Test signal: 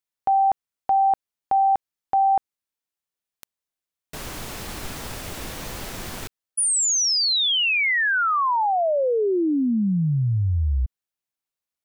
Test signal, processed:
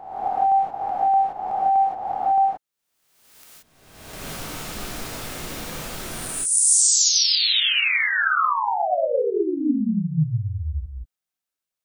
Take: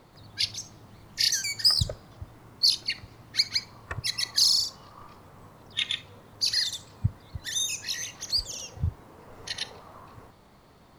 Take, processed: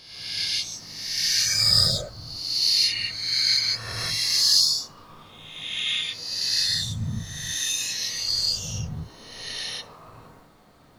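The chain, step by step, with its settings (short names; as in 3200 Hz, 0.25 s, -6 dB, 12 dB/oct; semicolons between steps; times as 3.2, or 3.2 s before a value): spectral swells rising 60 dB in 1.13 s; non-linear reverb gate 0.2 s rising, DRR -5.5 dB; gain -8 dB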